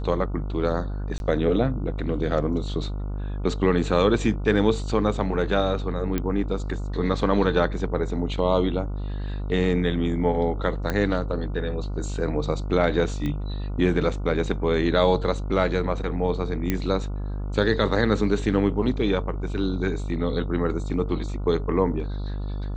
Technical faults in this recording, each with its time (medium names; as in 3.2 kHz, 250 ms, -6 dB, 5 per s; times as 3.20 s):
buzz 50 Hz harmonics 29 -29 dBFS
1.18–1.20 s: dropout 21 ms
6.18 s: pop -12 dBFS
10.90 s: pop -12 dBFS
13.26 s: pop -18 dBFS
16.70 s: pop -10 dBFS